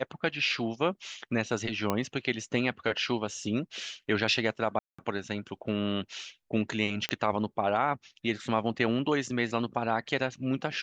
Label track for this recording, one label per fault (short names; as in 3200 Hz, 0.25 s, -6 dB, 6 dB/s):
1.900000	1.900000	pop -13 dBFS
4.790000	4.990000	gap 0.195 s
7.090000	7.090000	pop -14 dBFS